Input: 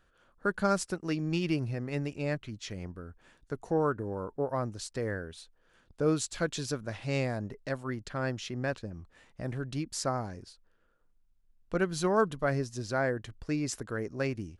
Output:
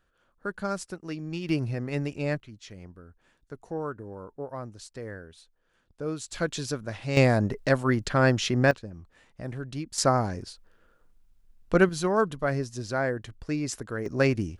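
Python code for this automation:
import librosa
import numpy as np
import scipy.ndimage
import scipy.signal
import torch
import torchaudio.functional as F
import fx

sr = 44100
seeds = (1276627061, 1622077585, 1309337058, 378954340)

y = fx.gain(x, sr, db=fx.steps((0.0, -3.5), (1.49, 3.5), (2.4, -5.0), (6.28, 2.5), (7.17, 11.5), (8.71, 0.0), (9.98, 9.0), (11.89, 2.0), (14.06, 9.0)))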